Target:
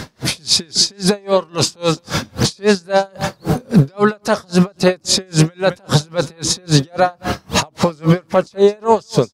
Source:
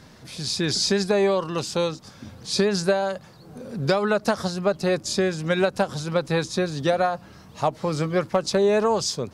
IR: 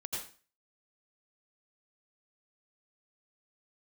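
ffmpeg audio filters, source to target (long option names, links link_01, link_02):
-af "acompressor=threshold=-32dB:ratio=6,lowshelf=frequency=150:gain=-3.5,dynaudnorm=framelen=140:gausssize=5:maxgain=8.5dB,aecho=1:1:211:0.119,alimiter=level_in=23.5dB:limit=-1dB:release=50:level=0:latency=1,aeval=exprs='val(0)*pow(10,-37*(0.5-0.5*cos(2*PI*3.7*n/s))/20)':channel_layout=same"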